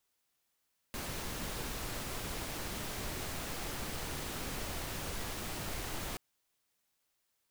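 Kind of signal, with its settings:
noise pink, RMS −39.5 dBFS 5.23 s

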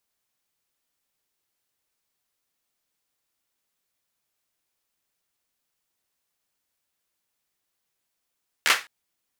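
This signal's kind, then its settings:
synth clap length 0.21 s, apart 13 ms, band 1,800 Hz, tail 0.26 s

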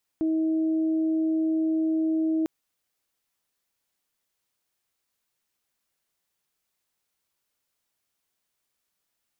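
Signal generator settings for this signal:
steady harmonic partials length 2.25 s, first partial 319 Hz, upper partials −18 dB, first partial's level −21.5 dB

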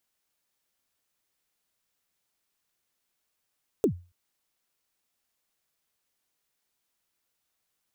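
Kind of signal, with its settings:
synth kick length 0.28 s, from 480 Hz, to 88 Hz, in 90 ms, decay 0.32 s, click on, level −15.5 dB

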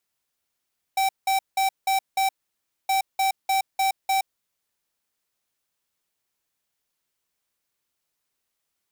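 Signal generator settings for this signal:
beeps in groups square 773 Hz, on 0.12 s, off 0.18 s, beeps 5, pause 0.60 s, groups 2, −21.5 dBFS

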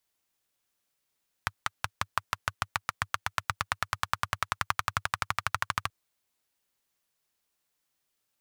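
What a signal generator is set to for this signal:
pulse-train model of a single-cylinder engine, changing speed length 4.43 s, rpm 600, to 1,600, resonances 100/1,200 Hz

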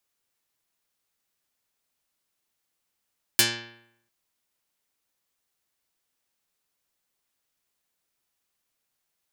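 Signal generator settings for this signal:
Karplus-Strong string A#2, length 0.70 s, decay 0.76 s, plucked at 0.18, dark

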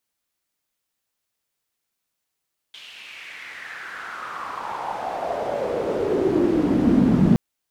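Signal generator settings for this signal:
filter sweep on noise pink, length 4.62 s bandpass, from 3,200 Hz, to 190 Hz, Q 4.3, exponential, gain ramp +27 dB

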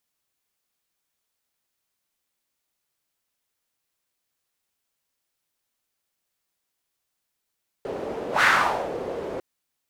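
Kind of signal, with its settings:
pass-by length 1.55 s, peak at 0:00.58, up 0.13 s, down 0.54 s, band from 470 Hz, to 1,600 Hz, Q 2.9, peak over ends 13.5 dB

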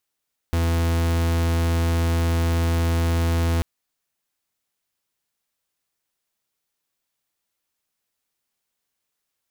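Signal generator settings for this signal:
pulse wave 83.5 Hz, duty 43% −20.5 dBFS 3.09 s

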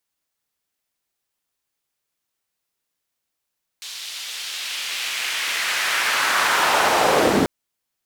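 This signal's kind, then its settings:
filter sweep on noise white, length 3.64 s bandpass, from 3,900 Hz, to 220 Hz, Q 1.4, linear, gain ramp +28 dB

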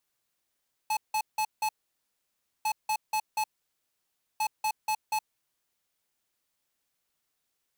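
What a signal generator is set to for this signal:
beeps in groups square 862 Hz, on 0.07 s, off 0.17 s, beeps 4, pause 0.96 s, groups 3, −27.5 dBFS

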